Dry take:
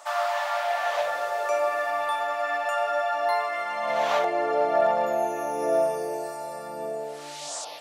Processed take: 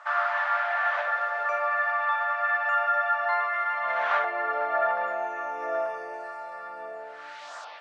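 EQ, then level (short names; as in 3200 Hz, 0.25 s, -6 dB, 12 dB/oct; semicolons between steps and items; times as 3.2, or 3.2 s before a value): band-pass 1500 Hz, Q 2.9; air absorption 65 m; +8.5 dB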